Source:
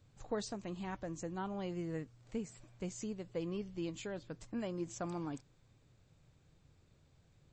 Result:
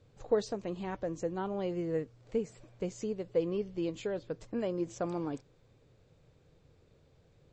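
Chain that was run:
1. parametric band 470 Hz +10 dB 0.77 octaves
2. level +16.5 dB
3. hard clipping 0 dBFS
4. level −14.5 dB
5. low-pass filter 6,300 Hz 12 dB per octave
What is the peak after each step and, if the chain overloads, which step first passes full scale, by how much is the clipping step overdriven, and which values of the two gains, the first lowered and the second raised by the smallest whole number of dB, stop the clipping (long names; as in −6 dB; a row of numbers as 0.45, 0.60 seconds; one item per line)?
−19.5, −3.0, −3.0, −17.5, −17.5 dBFS
no step passes full scale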